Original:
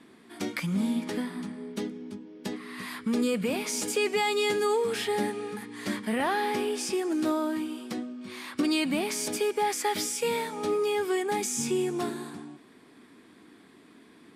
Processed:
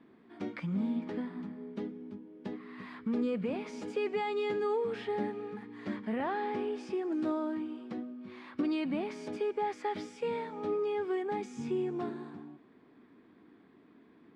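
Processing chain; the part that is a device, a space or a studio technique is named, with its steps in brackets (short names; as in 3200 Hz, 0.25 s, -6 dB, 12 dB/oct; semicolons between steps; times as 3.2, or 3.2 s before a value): phone in a pocket (LPF 3800 Hz 12 dB/oct; high shelf 2000 Hz -11.5 dB); 7.12–7.55 high shelf 7400 Hz +9.5 dB; gain -4.5 dB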